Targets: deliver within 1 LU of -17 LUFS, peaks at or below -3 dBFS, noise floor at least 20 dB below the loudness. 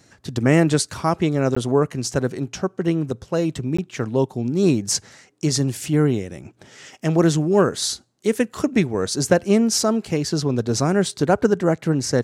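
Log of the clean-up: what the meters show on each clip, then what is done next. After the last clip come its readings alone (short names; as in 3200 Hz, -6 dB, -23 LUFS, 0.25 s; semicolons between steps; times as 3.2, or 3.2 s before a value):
dropouts 2; longest dropout 15 ms; loudness -21.0 LUFS; peak -3.5 dBFS; loudness target -17.0 LUFS
-> interpolate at 1.55/3.77, 15 ms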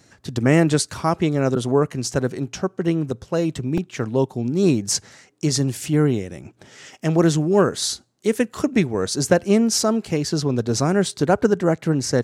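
dropouts 0; loudness -21.0 LUFS; peak -3.5 dBFS; loudness target -17.0 LUFS
-> gain +4 dB; limiter -3 dBFS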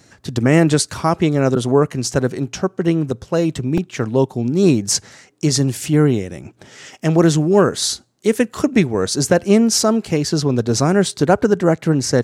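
loudness -17.0 LUFS; peak -3.0 dBFS; noise floor -53 dBFS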